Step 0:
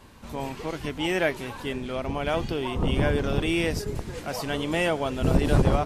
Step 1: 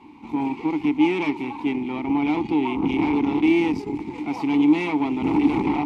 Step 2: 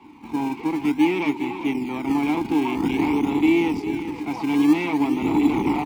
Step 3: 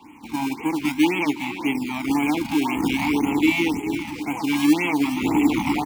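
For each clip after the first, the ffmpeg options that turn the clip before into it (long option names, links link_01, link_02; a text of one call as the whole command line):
ffmpeg -i in.wav -filter_complex "[0:a]aeval=exprs='0.473*(cos(1*acos(clip(val(0)/0.473,-1,1)))-cos(1*PI/2))+0.075*(cos(8*acos(clip(val(0)/0.473,-1,1)))-cos(8*PI/2))':channel_layout=same,aeval=exprs='0.562*sin(PI/2*2.82*val(0)/0.562)':channel_layout=same,asplit=3[link_01][link_02][link_03];[link_01]bandpass=frequency=300:width_type=q:width=8,volume=0dB[link_04];[link_02]bandpass=frequency=870:width_type=q:width=8,volume=-6dB[link_05];[link_03]bandpass=frequency=2240:width_type=q:width=8,volume=-9dB[link_06];[link_04][link_05][link_06]amix=inputs=3:normalize=0,volume=4dB" out.wav
ffmpeg -i in.wav -filter_complex "[0:a]acrossover=split=210|800[link_01][link_02][link_03];[link_01]acrusher=samples=23:mix=1:aa=0.000001:lfo=1:lforange=23:lforate=0.51[link_04];[link_04][link_02][link_03]amix=inputs=3:normalize=0,aecho=1:1:405:0.282" out.wav
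ffmpeg -i in.wav -af "highshelf=frequency=2100:gain=10,bandreject=frequency=380:width=12,afftfilt=real='re*(1-between(b*sr/1024,390*pow(4800/390,0.5+0.5*sin(2*PI*1.9*pts/sr))/1.41,390*pow(4800/390,0.5+0.5*sin(2*PI*1.9*pts/sr))*1.41))':imag='im*(1-between(b*sr/1024,390*pow(4800/390,0.5+0.5*sin(2*PI*1.9*pts/sr))/1.41,390*pow(4800/390,0.5+0.5*sin(2*PI*1.9*pts/sr))*1.41))':win_size=1024:overlap=0.75" out.wav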